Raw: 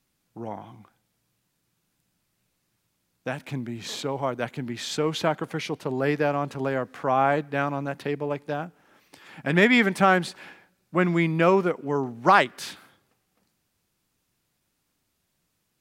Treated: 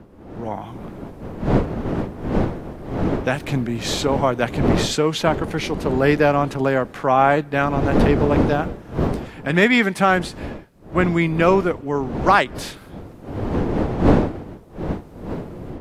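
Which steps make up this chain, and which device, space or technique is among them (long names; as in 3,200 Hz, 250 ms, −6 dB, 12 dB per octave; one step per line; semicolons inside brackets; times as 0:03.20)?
smartphone video outdoors (wind on the microphone 370 Hz −32 dBFS; automatic gain control gain up to 11.5 dB; level −1 dB; AAC 64 kbit/s 32,000 Hz)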